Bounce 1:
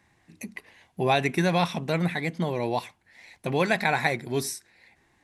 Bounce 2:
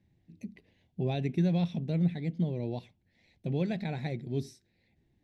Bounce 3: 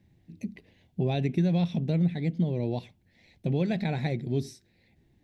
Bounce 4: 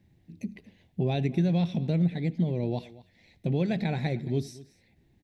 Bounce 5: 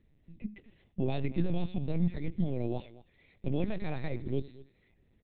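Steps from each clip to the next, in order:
FFT filter 170 Hz 0 dB, 620 Hz -12 dB, 1.1 kHz -27 dB, 3.5 kHz -13 dB, 6.4 kHz -20 dB, 9.3 kHz -28 dB
compression 2:1, threshold -31 dBFS, peak gain reduction 5 dB; trim +6.5 dB
delay 230 ms -19.5 dB; on a send at -23 dB: reverberation, pre-delay 60 ms
LPC vocoder at 8 kHz pitch kept; trim -3 dB

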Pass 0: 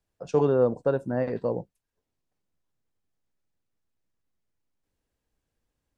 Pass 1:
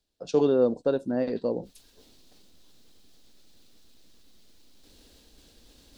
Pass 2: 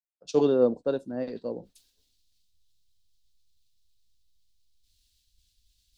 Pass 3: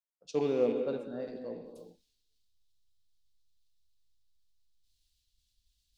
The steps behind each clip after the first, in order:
reverse; upward compressor, threshold -35 dBFS; reverse; graphic EQ 125/250/1000/2000/4000 Hz -10/+5/-5/-5/+12 dB
three bands expanded up and down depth 100%; trim -7.5 dB
rattle on loud lows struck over -30 dBFS, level -33 dBFS; on a send at -5 dB: reverberation, pre-delay 3 ms; on the sum: trim -8 dB

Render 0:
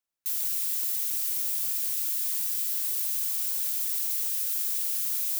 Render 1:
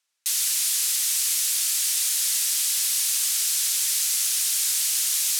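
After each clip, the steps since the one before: low-pass 8.7 kHz 12 dB/octave; tilt shelf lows -9.5 dB, about 780 Hz; trim +6.5 dB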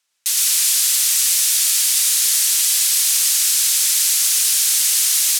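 delay 114 ms -3 dB; trim +5.5 dB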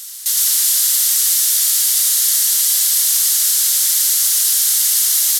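graphic EQ with 31 bands 200 Hz +9 dB, 315 Hz -9 dB, 2.5 kHz -9 dB, 12.5 kHz +6 dB; reverse echo 386 ms -17 dB

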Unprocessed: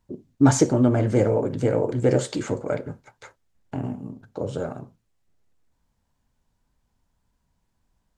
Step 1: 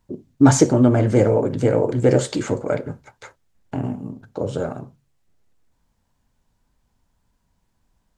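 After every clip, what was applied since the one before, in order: de-hum 69.8 Hz, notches 2; trim +4 dB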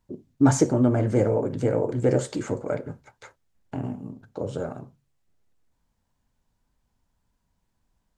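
dynamic bell 3.6 kHz, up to -5 dB, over -41 dBFS, Q 1; trim -5.5 dB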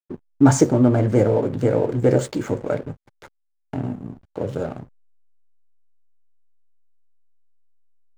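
hysteresis with a dead band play -38 dBFS; trim +4.5 dB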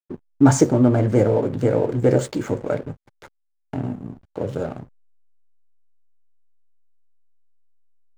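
no audible change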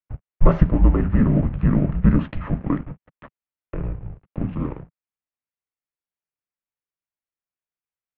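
mistuned SSB -300 Hz 150–3000 Hz; trim +2 dB

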